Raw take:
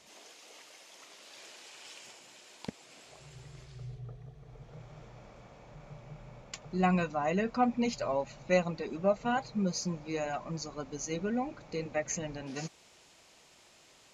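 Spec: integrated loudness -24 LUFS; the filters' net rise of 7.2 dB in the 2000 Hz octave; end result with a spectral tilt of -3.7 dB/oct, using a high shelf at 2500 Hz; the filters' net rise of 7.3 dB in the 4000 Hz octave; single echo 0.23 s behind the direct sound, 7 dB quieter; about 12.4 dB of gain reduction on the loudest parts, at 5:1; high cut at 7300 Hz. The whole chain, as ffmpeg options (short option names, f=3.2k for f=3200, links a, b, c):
-af "lowpass=7.3k,equalizer=f=2k:t=o:g=6,highshelf=f=2.5k:g=4.5,equalizer=f=4k:t=o:g=4,acompressor=threshold=-35dB:ratio=5,aecho=1:1:230:0.447,volume=16.5dB"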